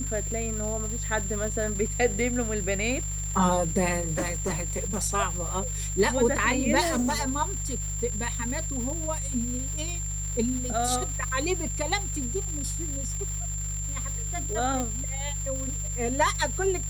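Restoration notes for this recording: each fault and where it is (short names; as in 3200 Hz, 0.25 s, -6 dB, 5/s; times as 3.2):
crackle 590/s -35 dBFS
hum 50 Hz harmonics 3 -33 dBFS
tone 7300 Hz -33 dBFS
4.16–5.03 clipped -23.5 dBFS
6.8–7.22 clipped -22 dBFS
14.8 pop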